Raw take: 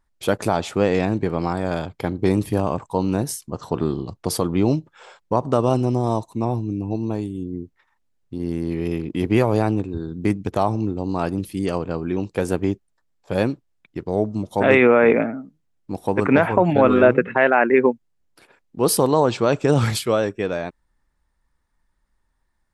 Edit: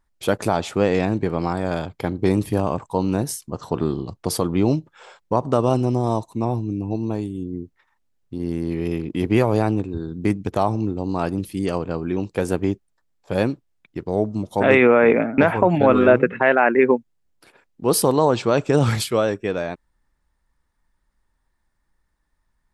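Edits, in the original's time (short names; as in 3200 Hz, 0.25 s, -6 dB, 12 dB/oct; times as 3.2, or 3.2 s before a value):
15.38–16.33 cut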